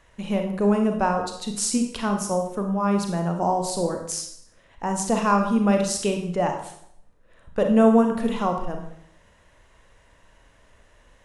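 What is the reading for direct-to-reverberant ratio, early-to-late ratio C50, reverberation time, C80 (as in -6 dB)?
3.5 dB, 6.0 dB, 0.70 s, 9.5 dB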